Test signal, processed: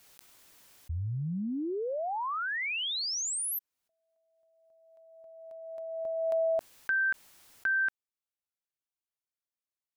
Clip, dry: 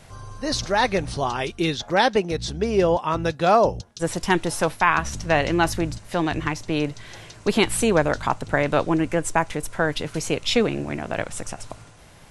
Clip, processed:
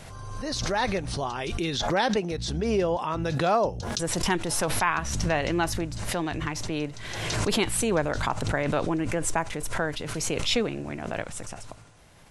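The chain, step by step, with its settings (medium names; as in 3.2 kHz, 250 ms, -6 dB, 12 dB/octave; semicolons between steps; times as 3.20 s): swell ahead of each attack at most 31 dB/s; trim -6.5 dB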